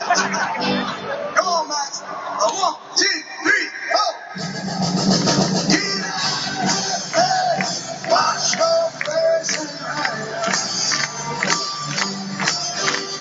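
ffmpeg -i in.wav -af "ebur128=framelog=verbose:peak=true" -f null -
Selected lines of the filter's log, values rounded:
Integrated loudness:
  I:         -19.6 LUFS
  Threshold: -29.6 LUFS
Loudness range:
  LRA:         1.9 LU
  Threshold: -39.4 LUFS
  LRA low:   -20.5 LUFS
  LRA high:  -18.6 LUFS
True peak:
  Peak:       -2.4 dBFS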